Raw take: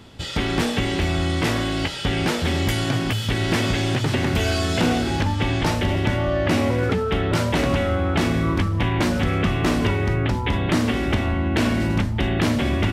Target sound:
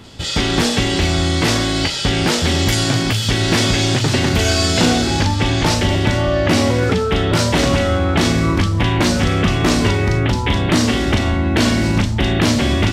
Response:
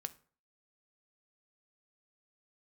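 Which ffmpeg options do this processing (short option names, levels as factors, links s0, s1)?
-filter_complex "[0:a]asplit=2[s0][s1];[s1]asuperpass=centerf=5800:order=4:qfactor=1.2[s2];[1:a]atrim=start_sample=2205,adelay=38[s3];[s2][s3]afir=irnorm=-1:irlink=0,volume=2.82[s4];[s0][s4]amix=inputs=2:normalize=0,volume=1.78"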